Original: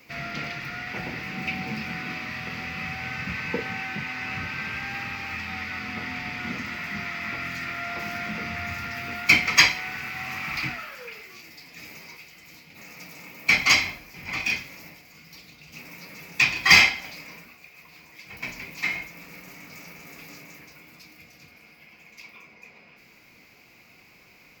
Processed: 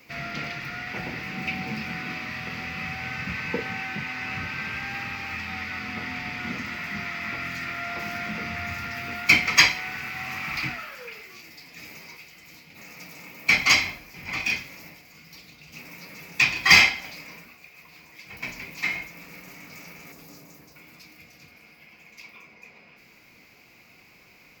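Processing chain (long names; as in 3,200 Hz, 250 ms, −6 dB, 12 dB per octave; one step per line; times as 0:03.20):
0:20.12–0:20.76: parametric band 2,300 Hz −10 dB 1.5 octaves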